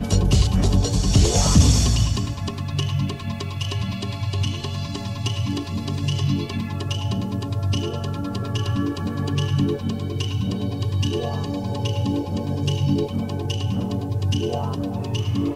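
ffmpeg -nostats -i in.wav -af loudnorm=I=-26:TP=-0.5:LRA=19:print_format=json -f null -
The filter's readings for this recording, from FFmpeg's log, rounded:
"input_i" : "-23.4",
"input_tp" : "-2.7",
"input_lra" : "5.0",
"input_thresh" : "-33.4",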